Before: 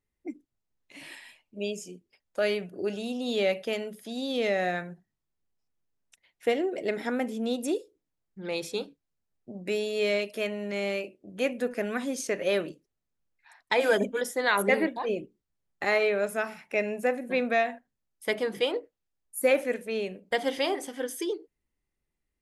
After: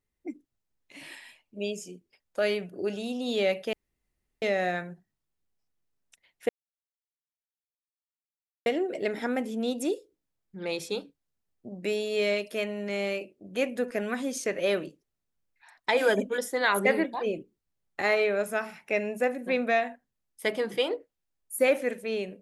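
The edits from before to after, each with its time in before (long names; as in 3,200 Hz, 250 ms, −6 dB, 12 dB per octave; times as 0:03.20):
0:03.73–0:04.42: fill with room tone
0:06.49: splice in silence 2.17 s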